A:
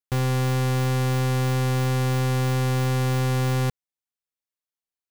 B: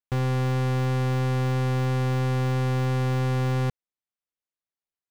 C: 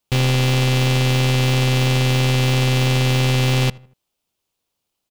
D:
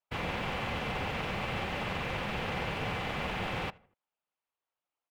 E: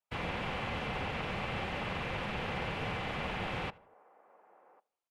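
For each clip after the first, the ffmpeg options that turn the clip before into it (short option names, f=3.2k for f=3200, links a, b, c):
-af "lowpass=f=2.9k:p=1,volume=-1.5dB"
-filter_complex "[0:a]highshelf=f=1.9k:t=q:w=1.5:g=12.5,asplit=2[a][b];[b]acrusher=samples=21:mix=1:aa=0.000001,volume=-6dB[c];[a][c]amix=inputs=2:normalize=0,asplit=2[d][e];[e]adelay=79,lowpass=f=2.4k:p=1,volume=-22.5dB,asplit=2[f][g];[g]adelay=79,lowpass=f=2.4k:p=1,volume=0.44,asplit=2[h][i];[i]adelay=79,lowpass=f=2.4k:p=1,volume=0.44[j];[d][f][h][j]amix=inputs=4:normalize=0,volume=3.5dB"
-filter_complex "[0:a]acrossover=split=600 2300:gain=0.158 1 0.1[a][b][c];[a][b][c]amix=inputs=3:normalize=0,afftfilt=real='hypot(re,im)*cos(2*PI*random(0))':imag='hypot(re,im)*sin(2*PI*random(1))':win_size=512:overlap=0.75"
-filter_complex "[0:a]lowpass=f=12k:w=0.5412,lowpass=f=12k:w=1.3066,acrossover=split=370|1300|4400[a][b][c][d];[b]aecho=1:1:1096:0.106[e];[d]alimiter=level_in=27dB:limit=-24dB:level=0:latency=1,volume=-27dB[f];[a][e][c][f]amix=inputs=4:normalize=0,volume=-2dB"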